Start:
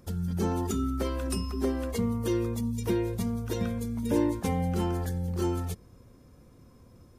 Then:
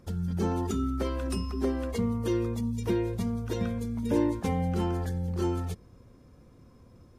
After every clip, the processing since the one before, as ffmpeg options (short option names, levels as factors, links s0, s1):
-af "highshelf=f=8500:g=-10.5"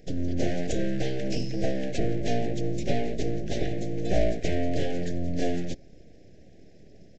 -af "aresample=16000,aeval=exprs='abs(val(0))':c=same,aresample=44100,asuperstop=centerf=1100:order=8:qfactor=1.1,volume=1.88"